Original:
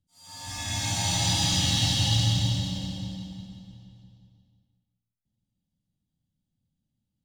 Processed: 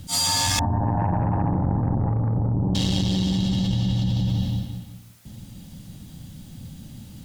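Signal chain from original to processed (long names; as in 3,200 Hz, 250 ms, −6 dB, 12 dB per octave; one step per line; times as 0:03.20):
0:00.59–0:02.75: Chebyshev low-pass filter 1,000 Hz, order 6
harmonic generator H 6 −16 dB, 8 −33 dB, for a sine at −16 dBFS
envelope flattener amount 100%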